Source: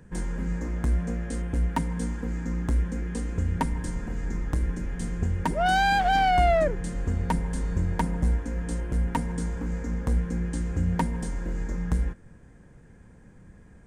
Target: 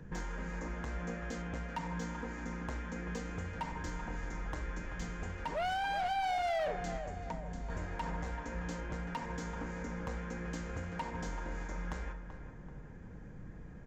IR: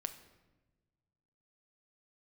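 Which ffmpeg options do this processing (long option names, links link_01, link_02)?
-filter_complex "[0:a]asettb=1/sr,asplit=3[link_01][link_02][link_03];[link_01]atrim=end=6.974[link_04];[link_02]atrim=start=6.97:end=7.7,asetpts=PTS-STARTPTS,afade=type=in:duration=0.004:curve=qsin,afade=type=out:start_time=0.726:duration=0.004:curve=qsin,acrossover=split=1800|6300[link_05][link_06][link_07];[link_05]acompressor=threshold=-39dB:ratio=4[link_08];[link_06]acompressor=threshold=-60dB:ratio=4[link_09];[link_07]acompressor=threshold=-55dB:ratio=4[link_10];[link_08][link_09][link_10]amix=inputs=3:normalize=0[link_11];[link_03]atrim=start=7.696[link_12];[link_04][link_11]acrossfade=duration=0.004:curve1=hsin:curve2=qsin[link_13];[link_13][link_12]acrossfade=duration=0.004:curve1=qsin:curve2=hsin,aresample=16000,aresample=44100[link_14];[1:a]atrim=start_sample=2205,atrim=end_sample=4410[link_15];[link_14][link_15]afir=irnorm=-1:irlink=0,acrossover=split=540[link_16][link_17];[link_16]acompressor=threshold=-42dB:ratio=6[link_18];[link_18][link_17]amix=inputs=2:normalize=0,alimiter=level_in=1dB:limit=-24dB:level=0:latency=1:release=89,volume=-1dB,volume=34.5dB,asoftclip=hard,volume=-34.5dB,highshelf=frequency=4300:gain=-7,asplit=2[link_19][link_20];[link_20]adelay=384,lowpass=frequency=1800:poles=1,volume=-9dB,asplit=2[link_21][link_22];[link_22]adelay=384,lowpass=frequency=1800:poles=1,volume=0.55,asplit=2[link_23][link_24];[link_24]adelay=384,lowpass=frequency=1800:poles=1,volume=0.55,asplit=2[link_25][link_26];[link_26]adelay=384,lowpass=frequency=1800:poles=1,volume=0.55,asplit=2[link_27][link_28];[link_28]adelay=384,lowpass=frequency=1800:poles=1,volume=0.55,asplit=2[link_29][link_30];[link_30]adelay=384,lowpass=frequency=1800:poles=1,volume=0.55[link_31];[link_19][link_21][link_23][link_25][link_27][link_29][link_31]amix=inputs=7:normalize=0,volume=2.5dB"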